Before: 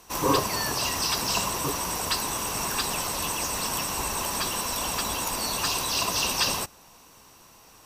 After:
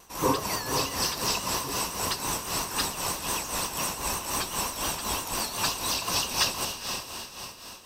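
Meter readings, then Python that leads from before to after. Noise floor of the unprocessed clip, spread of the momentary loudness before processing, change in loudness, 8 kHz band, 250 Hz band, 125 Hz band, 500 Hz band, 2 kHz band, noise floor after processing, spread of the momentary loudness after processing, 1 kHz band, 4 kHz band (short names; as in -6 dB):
-53 dBFS, 4 LU, -2.0 dB, -1.5 dB, -1.5 dB, -1.5 dB, -1.5 dB, -2.0 dB, -44 dBFS, 6 LU, -2.0 dB, -1.5 dB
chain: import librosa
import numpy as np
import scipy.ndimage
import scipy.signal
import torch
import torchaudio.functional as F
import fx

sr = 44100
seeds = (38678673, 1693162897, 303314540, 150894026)

p1 = fx.vibrato(x, sr, rate_hz=5.8, depth_cents=69.0)
p2 = p1 + fx.echo_diffused(p1, sr, ms=466, feedback_pct=50, wet_db=-6.5, dry=0)
y = p2 * (1.0 - 0.64 / 2.0 + 0.64 / 2.0 * np.cos(2.0 * np.pi * 3.9 * (np.arange(len(p2)) / sr)))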